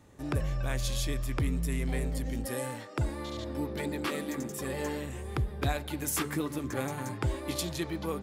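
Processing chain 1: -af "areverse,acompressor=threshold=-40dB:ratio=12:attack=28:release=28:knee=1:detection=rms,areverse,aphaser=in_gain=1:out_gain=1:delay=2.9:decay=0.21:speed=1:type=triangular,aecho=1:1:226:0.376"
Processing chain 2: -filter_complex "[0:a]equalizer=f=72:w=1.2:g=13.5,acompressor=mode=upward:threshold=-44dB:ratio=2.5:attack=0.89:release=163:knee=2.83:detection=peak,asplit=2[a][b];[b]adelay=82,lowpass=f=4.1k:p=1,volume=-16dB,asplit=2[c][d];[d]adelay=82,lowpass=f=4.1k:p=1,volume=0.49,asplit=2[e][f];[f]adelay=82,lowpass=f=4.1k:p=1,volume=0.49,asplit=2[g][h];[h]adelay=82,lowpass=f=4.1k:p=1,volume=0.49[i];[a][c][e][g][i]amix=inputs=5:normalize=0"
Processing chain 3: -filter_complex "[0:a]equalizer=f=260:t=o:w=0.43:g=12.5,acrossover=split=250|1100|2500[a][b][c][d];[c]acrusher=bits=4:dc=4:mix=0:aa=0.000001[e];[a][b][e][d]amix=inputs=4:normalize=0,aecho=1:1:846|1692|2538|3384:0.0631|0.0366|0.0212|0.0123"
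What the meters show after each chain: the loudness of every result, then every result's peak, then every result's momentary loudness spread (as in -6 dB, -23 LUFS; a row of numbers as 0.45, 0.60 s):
-40.0, -28.0, -30.0 LUFS; -26.0, -10.0, -15.0 dBFS; 3, 8, 5 LU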